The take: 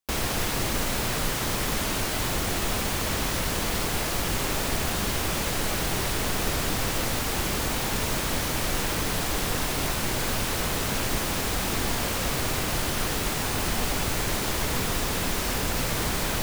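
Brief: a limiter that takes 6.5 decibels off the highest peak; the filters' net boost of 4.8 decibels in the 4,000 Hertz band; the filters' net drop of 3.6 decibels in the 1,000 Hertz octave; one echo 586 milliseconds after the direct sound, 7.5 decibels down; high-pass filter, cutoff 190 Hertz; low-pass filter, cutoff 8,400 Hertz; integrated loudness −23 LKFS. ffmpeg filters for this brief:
ffmpeg -i in.wav -af "highpass=190,lowpass=8400,equalizer=frequency=1000:width_type=o:gain=-5,equalizer=frequency=4000:width_type=o:gain=6.5,alimiter=limit=-22dB:level=0:latency=1,aecho=1:1:586:0.422,volume=6dB" out.wav

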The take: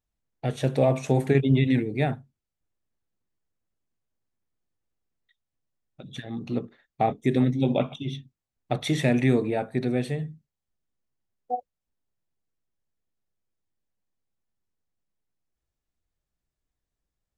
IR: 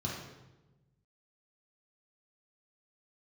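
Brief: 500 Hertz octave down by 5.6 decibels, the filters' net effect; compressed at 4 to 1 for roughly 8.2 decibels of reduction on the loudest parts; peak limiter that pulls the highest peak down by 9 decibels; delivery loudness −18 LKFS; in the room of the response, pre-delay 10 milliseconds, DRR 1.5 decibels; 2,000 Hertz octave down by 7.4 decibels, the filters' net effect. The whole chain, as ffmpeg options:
-filter_complex "[0:a]equalizer=frequency=500:width_type=o:gain=-7,equalizer=frequency=2000:width_type=o:gain=-8.5,acompressor=threshold=-27dB:ratio=4,alimiter=level_in=0.5dB:limit=-24dB:level=0:latency=1,volume=-0.5dB,asplit=2[link_01][link_02];[1:a]atrim=start_sample=2205,adelay=10[link_03];[link_02][link_03]afir=irnorm=-1:irlink=0,volume=-5dB[link_04];[link_01][link_04]amix=inputs=2:normalize=0,volume=7.5dB"

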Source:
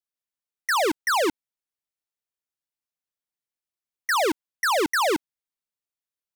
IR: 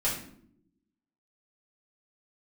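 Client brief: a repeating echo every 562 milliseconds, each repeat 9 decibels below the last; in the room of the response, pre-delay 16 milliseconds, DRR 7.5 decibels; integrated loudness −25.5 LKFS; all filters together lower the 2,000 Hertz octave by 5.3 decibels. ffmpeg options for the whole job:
-filter_complex "[0:a]equalizer=frequency=2000:width_type=o:gain=-7,aecho=1:1:562|1124|1686|2248:0.355|0.124|0.0435|0.0152,asplit=2[link_01][link_02];[1:a]atrim=start_sample=2205,adelay=16[link_03];[link_02][link_03]afir=irnorm=-1:irlink=0,volume=-15.5dB[link_04];[link_01][link_04]amix=inputs=2:normalize=0"

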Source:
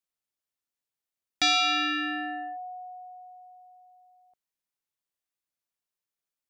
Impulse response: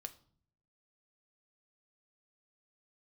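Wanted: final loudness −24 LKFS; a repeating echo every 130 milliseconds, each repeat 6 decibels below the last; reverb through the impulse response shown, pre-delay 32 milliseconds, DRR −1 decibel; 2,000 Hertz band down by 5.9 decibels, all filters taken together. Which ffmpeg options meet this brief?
-filter_complex "[0:a]equalizer=frequency=2000:width_type=o:gain=-8,aecho=1:1:130|260|390|520|650|780:0.501|0.251|0.125|0.0626|0.0313|0.0157,asplit=2[link_01][link_02];[1:a]atrim=start_sample=2205,adelay=32[link_03];[link_02][link_03]afir=irnorm=-1:irlink=0,volume=5dB[link_04];[link_01][link_04]amix=inputs=2:normalize=0,volume=2.5dB"

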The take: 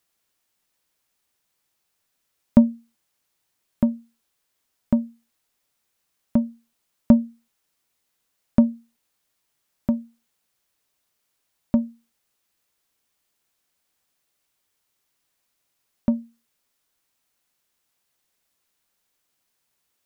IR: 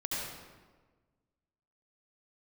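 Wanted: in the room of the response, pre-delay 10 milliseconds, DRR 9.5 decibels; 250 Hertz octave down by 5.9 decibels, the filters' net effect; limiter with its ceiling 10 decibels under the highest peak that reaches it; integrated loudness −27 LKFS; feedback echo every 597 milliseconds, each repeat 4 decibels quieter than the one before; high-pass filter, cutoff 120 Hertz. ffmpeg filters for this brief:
-filter_complex "[0:a]highpass=120,equalizer=frequency=250:width_type=o:gain=-6,alimiter=limit=-14.5dB:level=0:latency=1,aecho=1:1:597|1194|1791|2388|2985|3582|4179|4776|5373:0.631|0.398|0.25|0.158|0.0994|0.0626|0.0394|0.0249|0.0157,asplit=2[link_01][link_02];[1:a]atrim=start_sample=2205,adelay=10[link_03];[link_02][link_03]afir=irnorm=-1:irlink=0,volume=-14.5dB[link_04];[link_01][link_04]amix=inputs=2:normalize=0,volume=8dB"

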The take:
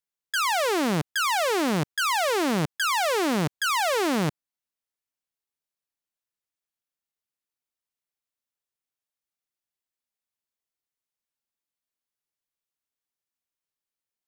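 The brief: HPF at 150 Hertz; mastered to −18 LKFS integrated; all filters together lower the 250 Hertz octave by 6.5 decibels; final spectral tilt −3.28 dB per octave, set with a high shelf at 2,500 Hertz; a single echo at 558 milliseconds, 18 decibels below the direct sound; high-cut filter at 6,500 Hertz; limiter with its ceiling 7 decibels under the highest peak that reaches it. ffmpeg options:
ffmpeg -i in.wav -af "highpass=150,lowpass=6500,equalizer=frequency=250:width_type=o:gain=-8,highshelf=frequency=2500:gain=-8.5,alimiter=limit=-23.5dB:level=0:latency=1,aecho=1:1:558:0.126,volume=12.5dB" out.wav

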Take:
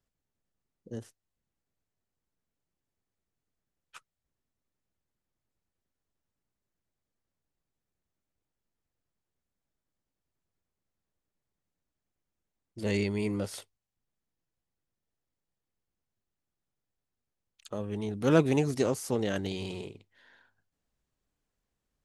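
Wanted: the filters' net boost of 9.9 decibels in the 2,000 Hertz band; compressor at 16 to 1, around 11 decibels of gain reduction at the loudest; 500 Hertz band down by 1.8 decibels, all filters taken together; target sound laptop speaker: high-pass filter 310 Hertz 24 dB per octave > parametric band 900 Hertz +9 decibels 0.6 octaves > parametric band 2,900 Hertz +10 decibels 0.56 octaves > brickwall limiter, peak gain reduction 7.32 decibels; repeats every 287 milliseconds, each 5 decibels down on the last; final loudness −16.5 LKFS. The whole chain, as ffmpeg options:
ffmpeg -i in.wav -af "equalizer=frequency=500:width_type=o:gain=-3.5,equalizer=frequency=2000:width_type=o:gain=7.5,acompressor=threshold=-28dB:ratio=16,highpass=frequency=310:width=0.5412,highpass=frequency=310:width=1.3066,equalizer=frequency=900:width_type=o:width=0.6:gain=9,equalizer=frequency=2900:width_type=o:width=0.56:gain=10,aecho=1:1:287|574|861|1148|1435|1722|2009:0.562|0.315|0.176|0.0988|0.0553|0.031|0.0173,volume=21dB,alimiter=limit=-3dB:level=0:latency=1" out.wav

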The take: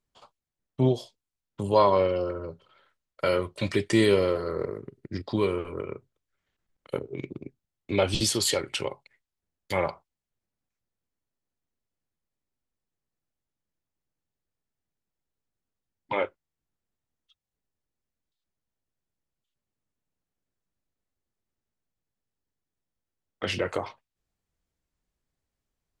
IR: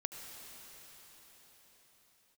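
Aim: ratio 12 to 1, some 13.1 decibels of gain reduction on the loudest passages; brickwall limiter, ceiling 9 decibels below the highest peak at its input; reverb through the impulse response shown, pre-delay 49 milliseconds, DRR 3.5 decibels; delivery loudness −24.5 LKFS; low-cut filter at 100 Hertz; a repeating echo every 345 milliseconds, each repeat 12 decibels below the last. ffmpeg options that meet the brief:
-filter_complex "[0:a]highpass=100,acompressor=threshold=-29dB:ratio=12,alimiter=level_in=2.5dB:limit=-24dB:level=0:latency=1,volume=-2.5dB,aecho=1:1:345|690|1035:0.251|0.0628|0.0157,asplit=2[link_01][link_02];[1:a]atrim=start_sample=2205,adelay=49[link_03];[link_02][link_03]afir=irnorm=-1:irlink=0,volume=-3dB[link_04];[link_01][link_04]amix=inputs=2:normalize=0,volume=13.5dB"

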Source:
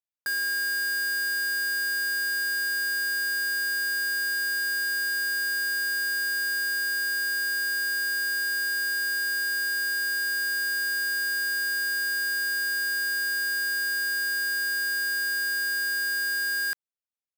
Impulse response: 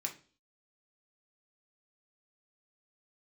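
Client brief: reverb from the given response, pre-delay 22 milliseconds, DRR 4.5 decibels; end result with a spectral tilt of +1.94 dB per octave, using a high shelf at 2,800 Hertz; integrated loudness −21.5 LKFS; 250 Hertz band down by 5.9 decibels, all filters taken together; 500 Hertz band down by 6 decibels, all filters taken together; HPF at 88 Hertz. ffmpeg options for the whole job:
-filter_complex "[0:a]highpass=88,equalizer=frequency=250:width_type=o:gain=-7,equalizer=frequency=500:width_type=o:gain=-5,highshelf=frequency=2800:gain=-7,asplit=2[link_01][link_02];[1:a]atrim=start_sample=2205,adelay=22[link_03];[link_02][link_03]afir=irnorm=-1:irlink=0,volume=-5dB[link_04];[link_01][link_04]amix=inputs=2:normalize=0,volume=10.5dB"

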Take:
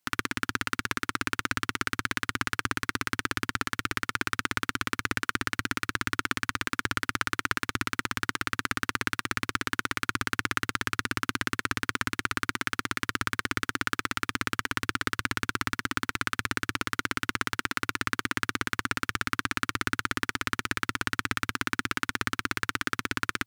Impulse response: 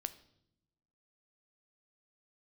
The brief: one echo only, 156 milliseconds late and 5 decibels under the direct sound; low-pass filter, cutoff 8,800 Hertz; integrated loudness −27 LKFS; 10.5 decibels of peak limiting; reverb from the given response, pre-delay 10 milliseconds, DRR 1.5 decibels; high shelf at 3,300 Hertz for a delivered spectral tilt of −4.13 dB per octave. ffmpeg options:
-filter_complex "[0:a]lowpass=8800,highshelf=frequency=3300:gain=-6,alimiter=limit=-18dB:level=0:latency=1,aecho=1:1:156:0.562,asplit=2[link_01][link_02];[1:a]atrim=start_sample=2205,adelay=10[link_03];[link_02][link_03]afir=irnorm=-1:irlink=0,volume=0.5dB[link_04];[link_01][link_04]amix=inputs=2:normalize=0,volume=9dB"

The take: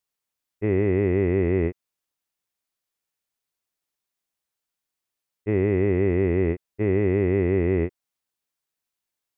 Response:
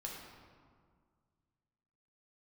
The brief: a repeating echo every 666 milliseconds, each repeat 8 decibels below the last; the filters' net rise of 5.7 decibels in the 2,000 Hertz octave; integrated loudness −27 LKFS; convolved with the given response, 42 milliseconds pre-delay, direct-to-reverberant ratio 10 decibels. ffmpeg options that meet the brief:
-filter_complex "[0:a]equalizer=frequency=2000:width_type=o:gain=6,aecho=1:1:666|1332|1998|2664|3330:0.398|0.159|0.0637|0.0255|0.0102,asplit=2[link_01][link_02];[1:a]atrim=start_sample=2205,adelay=42[link_03];[link_02][link_03]afir=irnorm=-1:irlink=0,volume=-9dB[link_04];[link_01][link_04]amix=inputs=2:normalize=0,volume=-4dB"

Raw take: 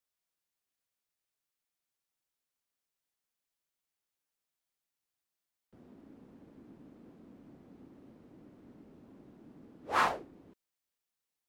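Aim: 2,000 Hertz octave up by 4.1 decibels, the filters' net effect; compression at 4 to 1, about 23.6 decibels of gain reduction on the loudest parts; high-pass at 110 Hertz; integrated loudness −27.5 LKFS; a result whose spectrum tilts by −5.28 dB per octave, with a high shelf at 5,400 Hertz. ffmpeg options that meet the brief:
ffmpeg -i in.wav -af "highpass=110,equalizer=frequency=2000:width_type=o:gain=6.5,highshelf=frequency=5400:gain=-9,acompressor=threshold=-51dB:ratio=4,volume=29dB" out.wav

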